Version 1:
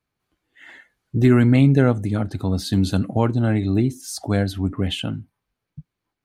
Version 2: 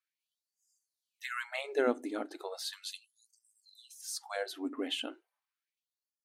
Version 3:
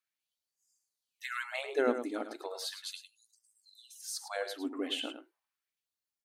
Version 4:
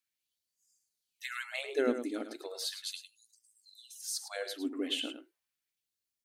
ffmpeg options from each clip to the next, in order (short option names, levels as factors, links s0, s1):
-af "afftfilt=real='re*gte(b*sr/1024,220*pow(4800/220,0.5+0.5*sin(2*PI*0.36*pts/sr)))':imag='im*gte(b*sr/1024,220*pow(4800/220,0.5+0.5*sin(2*PI*0.36*pts/sr)))':win_size=1024:overlap=0.75,volume=0.398"
-filter_complex "[0:a]asplit=2[s0][s1];[s1]adelay=105,volume=0.355,highshelf=f=4000:g=-2.36[s2];[s0][s2]amix=inputs=2:normalize=0"
-af "equalizer=f=930:w=1:g=-12,volume=1.41"